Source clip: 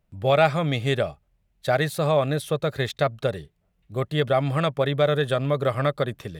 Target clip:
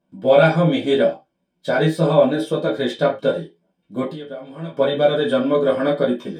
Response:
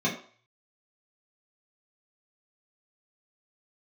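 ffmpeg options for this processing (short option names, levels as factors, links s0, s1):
-filter_complex "[0:a]asettb=1/sr,asplit=3[s0][s1][s2];[s0]atrim=end=4.054[s3];[s1]atrim=start=4.05:end=4.72,asetpts=PTS-STARTPTS,afade=t=in:d=0.004:c=qsin,afade=t=out:st=0.666:d=0.004:c=qsin,acompressor=threshold=0.0178:ratio=10[s4];[s2]atrim=start=4.716[s5];[s3][s4]acrossfade=d=0.004:c1=hsin:c2=qsin[s6];[s6][s5]acrossfade=d=0.004:c1=qsin:c2=hsin,flanger=delay=15:depth=3.9:speed=0.79[s7];[1:a]atrim=start_sample=2205,afade=t=out:st=0.21:d=0.01,atrim=end_sample=9702,asetrate=61740,aresample=44100[s8];[s7][s8]afir=irnorm=-1:irlink=0,volume=0.794"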